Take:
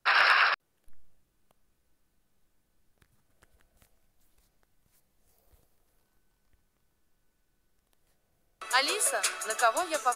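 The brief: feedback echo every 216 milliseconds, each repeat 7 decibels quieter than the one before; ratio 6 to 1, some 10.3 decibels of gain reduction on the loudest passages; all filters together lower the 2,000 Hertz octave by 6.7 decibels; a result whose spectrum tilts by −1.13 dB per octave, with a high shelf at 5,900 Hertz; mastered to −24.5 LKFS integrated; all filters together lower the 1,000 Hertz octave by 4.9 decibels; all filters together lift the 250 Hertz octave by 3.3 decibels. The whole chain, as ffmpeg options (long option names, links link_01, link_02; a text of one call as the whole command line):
ffmpeg -i in.wav -af "equalizer=frequency=250:width_type=o:gain=5.5,equalizer=frequency=1000:width_type=o:gain=-4.5,equalizer=frequency=2000:width_type=o:gain=-8,highshelf=frequency=5900:gain=4,acompressor=threshold=-33dB:ratio=6,aecho=1:1:216|432|648|864|1080:0.447|0.201|0.0905|0.0407|0.0183,volume=11dB" out.wav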